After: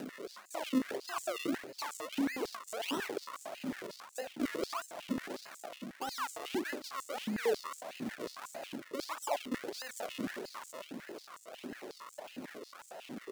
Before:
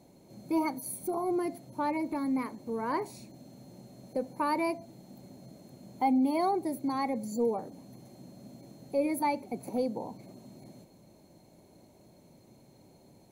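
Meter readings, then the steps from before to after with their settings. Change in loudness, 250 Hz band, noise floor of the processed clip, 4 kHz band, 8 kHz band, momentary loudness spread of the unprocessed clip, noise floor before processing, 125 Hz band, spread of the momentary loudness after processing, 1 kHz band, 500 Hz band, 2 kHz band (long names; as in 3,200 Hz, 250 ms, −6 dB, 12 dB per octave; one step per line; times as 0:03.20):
−8.0 dB, −6.5 dB, −57 dBFS, +7.5 dB, +1.0 dB, 22 LU, −59 dBFS, −5.5 dB, 13 LU, −8.5 dB, −5.0 dB, +2.0 dB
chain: parametric band 2,300 Hz +14.5 dB 0.59 octaves
reversed playback
downward compressor 12 to 1, threshold −39 dBFS, peak gain reduction 18.5 dB
reversed playback
brickwall limiter −39 dBFS, peak gain reduction 9 dB
flutter between parallel walls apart 6.6 metres, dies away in 0.2 s
sample-and-hold swept by an LFO 38×, swing 100% 1.6 Hz
upward compression, threshold −50 dBFS
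high-pass on a step sequencer 11 Hz 250–7,400 Hz
level +7.5 dB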